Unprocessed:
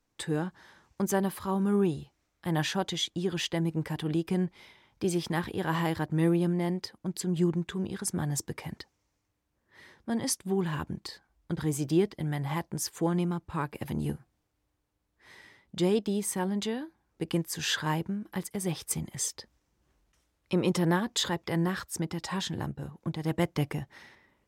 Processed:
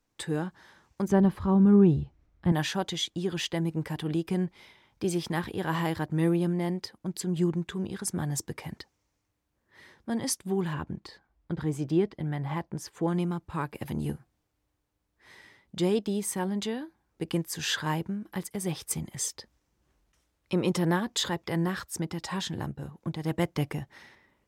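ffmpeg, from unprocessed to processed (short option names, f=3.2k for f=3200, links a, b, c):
-filter_complex "[0:a]asettb=1/sr,asplit=3[a][b][c];[a]atrim=end=1.084[d];[b]atrim=start=1.08:end=2.52,asetpts=PTS-STARTPTS,afade=t=in:d=0.004:c=qsin,afade=t=out:st=1.436:d=0.004:c=qsin,aemphasis=mode=reproduction:type=riaa[e];[c]atrim=start=2.516[f];[d][e]acrossfade=d=0.004:c1=hsin:c2=qsin[g];[g][f]acrossfade=d=0.004:c1=qsin:c2=hsin,asettb=1/sr,asplit=3[h][i][j];[h]atrim=end=10.734[k];[i]atrim=start=10.73:end=13.08,asetpts=PTS-STARTPTS,afade=t=in:d=0.004:c=qsin,afade=t=out:st=2.346:d=0.004:c=qsin,lowpass=f=2.3k:p=1[l];[j]atrim=start=13.076[m];[k][l]acrossfade=d=0.004:c1=hsin:c2=qsin[n];[n][m]acrossfade=d=0.004:c1=qsin:c2=hsin"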